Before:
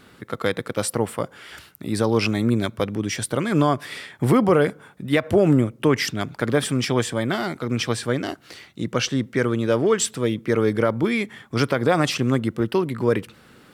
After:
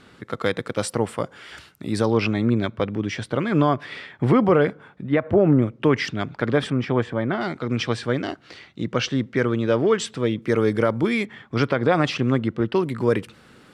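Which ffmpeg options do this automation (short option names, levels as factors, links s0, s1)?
-af "asetnsamples=n=441:p=0,asendcmd='2.12 lowpass f 3500;5.07 lowpass f 1700;5.62 lowpass f 3800;6.7 lowpass f 1900;7.41 lowpass f 4600;10.42 lowpass f 9400;11.25 lowpass f 3900;12.76 lowpass f 10000',lowpass=7700"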